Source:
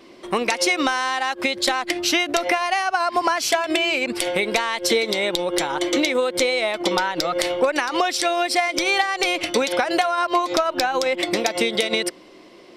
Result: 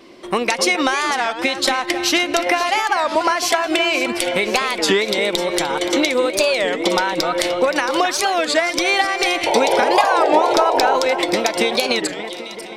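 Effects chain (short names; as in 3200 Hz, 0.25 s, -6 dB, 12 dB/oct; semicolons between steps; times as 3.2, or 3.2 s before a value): painted sound noise, 9.46–10.96, 400–1000 Hz -21 dBFS; echo with dull and thin repeats by turns 0.262 s, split 2400 Hz, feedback 73%, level -9.5 dB; record warp 33 1/3 rpm, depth 250 cents; gain +2.5 dB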